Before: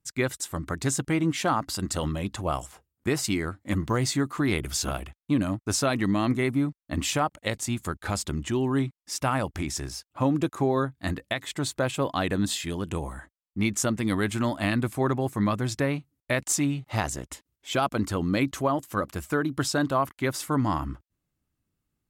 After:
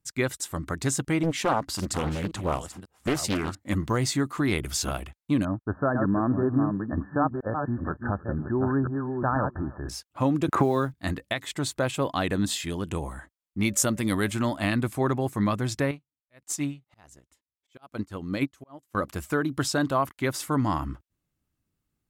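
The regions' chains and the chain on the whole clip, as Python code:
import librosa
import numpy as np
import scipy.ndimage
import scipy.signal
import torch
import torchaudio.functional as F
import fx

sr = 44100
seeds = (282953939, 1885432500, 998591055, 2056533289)

y = fx.chain(x, sr, fx.reverse_delay(ms=542, wet_db=-13),
    fx.doppler_dist(depth_ms=0.77), at=(1.23, 3.55))
y = fx.chain(y, sr, fx.reverse_delay(ms=489, wet_db=-5.0),
    fx.brickwall_lowpass(high_hz=1800.0),
    fx.echo_single(ms=316, db=-23.0), at=(5.45, 9.89))
y = fx.chain(y, sr, fx.block_float(bits=7),
    fx.band_squash(depth_pct=100), at=(10.48, 10.94))
y = fx.high_shelf(y, sr, hz=8300.0, db=10.0, at=(13.62, 14.3), fade=0.02)
y = fx.dmg_tone(y, sr, hz=570.0, level_db=-50.0, at=(13.62, 14.3), fade=0.02)
y = fx.chain(y, sr, fx.auto_swell(attack_ms=183.0),
    fx.upward_expand(threshold_db=-37.0, expansion=2.5), at=(15.91, 18.95))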